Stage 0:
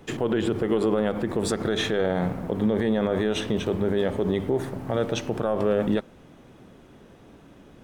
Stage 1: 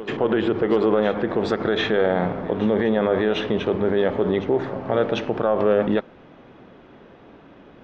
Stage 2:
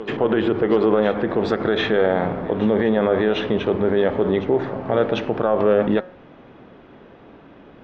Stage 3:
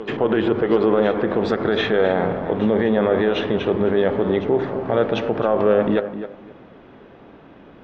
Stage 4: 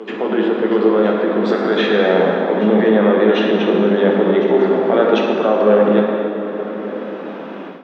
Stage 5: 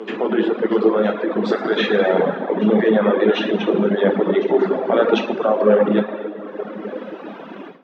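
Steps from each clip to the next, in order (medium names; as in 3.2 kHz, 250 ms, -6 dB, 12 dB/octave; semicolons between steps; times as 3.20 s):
Gaussian low-pass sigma 2.3 samples; bass shelf 230 Hz -10.5 dB; reverse echo 747 ms -15 dB; trim +7 dB
distance through air 72 m; de-hum 182.1 Hz, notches 11; trim +2 dB
tape echo 261 ms, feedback 23%, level -9 dB, low-pass 2.1 kHz
steep high-pass 180 Hz 48 dB/octave; plate-style reverb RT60 2.8 s, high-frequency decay 0.75×, DRR -0.5 dB; level rider gain up to 13.5 dB; trim -1 dB
reverb removal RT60 1.8 s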